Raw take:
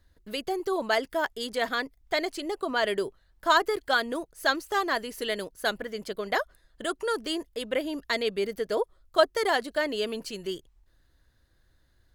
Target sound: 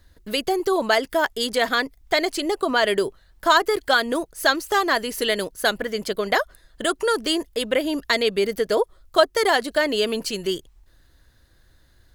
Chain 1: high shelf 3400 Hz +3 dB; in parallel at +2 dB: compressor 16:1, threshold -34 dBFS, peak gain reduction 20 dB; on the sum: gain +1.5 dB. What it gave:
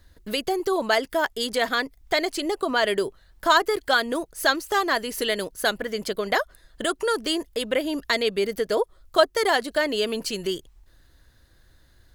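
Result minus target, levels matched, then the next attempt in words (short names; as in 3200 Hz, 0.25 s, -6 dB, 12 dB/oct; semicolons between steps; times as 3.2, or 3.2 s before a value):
compressor: peak gain reduction +7.5 dB
high shelf 3400 Hz +3 dB; in parallel at +2 dB: compressor 16:1, threshold -26 dBFS, peak gain reduction 12.5 dB; on the sum: gain +1.5 dB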